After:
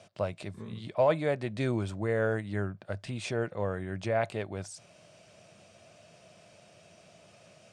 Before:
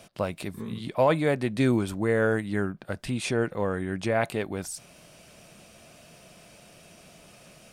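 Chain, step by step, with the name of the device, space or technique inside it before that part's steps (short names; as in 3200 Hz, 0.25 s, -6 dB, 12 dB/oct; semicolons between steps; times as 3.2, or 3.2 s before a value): car door speaker (speaker cabinet 98–8200 Hz, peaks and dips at 100 Hz +10 dB, 260 Hz -5 dB, 620 Hz +6 dB); gain -6 dB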